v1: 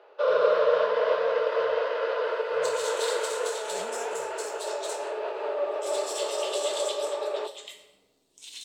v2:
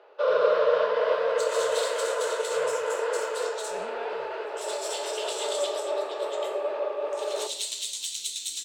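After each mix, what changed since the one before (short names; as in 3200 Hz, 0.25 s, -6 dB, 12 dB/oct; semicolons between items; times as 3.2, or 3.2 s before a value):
second sound: entry -1.25 s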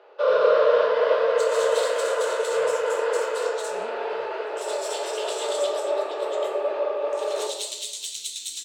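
first sound: send +11.5 dB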